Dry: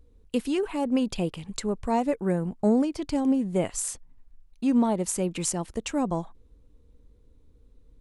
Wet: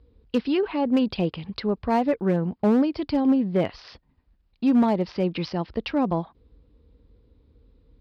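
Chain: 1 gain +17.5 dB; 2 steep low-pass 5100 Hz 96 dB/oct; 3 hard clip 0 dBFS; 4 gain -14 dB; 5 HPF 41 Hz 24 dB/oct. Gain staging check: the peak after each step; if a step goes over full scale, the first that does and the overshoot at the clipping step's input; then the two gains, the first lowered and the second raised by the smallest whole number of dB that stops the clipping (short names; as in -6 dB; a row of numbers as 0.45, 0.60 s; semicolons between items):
+6.0, +5.5, 0.0, -14.0, -11.5 dBFS; step 1, 5.5 dB; step 1 +11.5 dB, step 4 -8 dB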